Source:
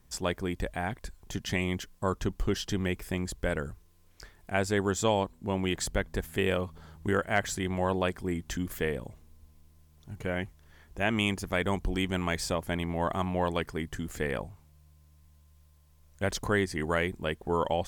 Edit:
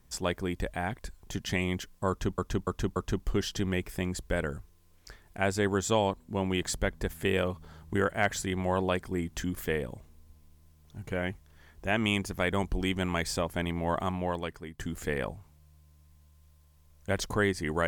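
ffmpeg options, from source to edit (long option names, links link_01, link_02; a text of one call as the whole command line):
ffmpeg -i in.wav -filter_complex "[0:a]asplit=5[link_01][link_02][link_03][link_04][link_05];[link_01]atrim=end=2.382[link_06];[link_02]atrim=start=2.088:end=2.382[link_07];[link_03]atrim=start=2.088:end=2.382[link_08];[link_04]atrim=start=2.088:end=13.92,asetpts=PTS-STARTPTS,afade=type=out:start_time=11.022:duration=0.81:silence=0.251189[link_09];[link_05]atrim=start=13.92,asetpts=PTS-STARTPTS,afade=type=in:duration=0.004:curve=hsin:silence=0.251189[link_10];[link_06][link_07]acrossfade=duration=0.004:curve1=hsin:curve2=hsin[link_11];[link_11][link_08]acrossfade=duration=0.004:curve1=hsin:curve2=hsin[link_12];[link_09][link_10]concat=n=2:v=0:a=1[link_13];[link_12][link_13]acrossfade=duration=0.004:curve1=hsin:curve2=hsin" out.wav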